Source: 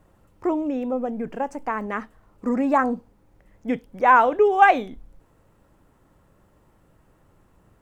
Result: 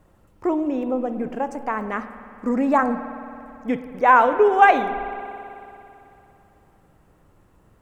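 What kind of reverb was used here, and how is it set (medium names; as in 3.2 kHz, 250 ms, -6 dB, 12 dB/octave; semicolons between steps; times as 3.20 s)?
spring tank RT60 2.9 s, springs 55 ms, chirp 50 ms, DRR 10.5 dB; trim +1 dB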